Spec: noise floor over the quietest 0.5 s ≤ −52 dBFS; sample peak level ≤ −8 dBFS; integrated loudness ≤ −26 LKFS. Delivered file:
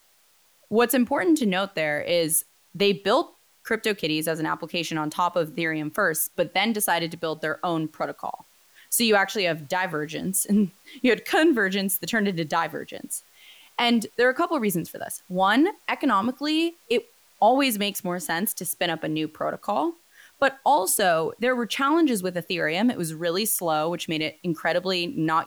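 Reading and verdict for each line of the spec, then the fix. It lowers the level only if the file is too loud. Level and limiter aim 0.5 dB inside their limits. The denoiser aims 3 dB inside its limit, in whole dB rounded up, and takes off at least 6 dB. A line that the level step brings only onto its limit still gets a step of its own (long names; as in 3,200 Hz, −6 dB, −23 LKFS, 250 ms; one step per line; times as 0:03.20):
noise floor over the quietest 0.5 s −61 dBFS: in spec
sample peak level −9.0 dBFS: in spec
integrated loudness −24.0 LKFS: out of spec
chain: level −2.5 dB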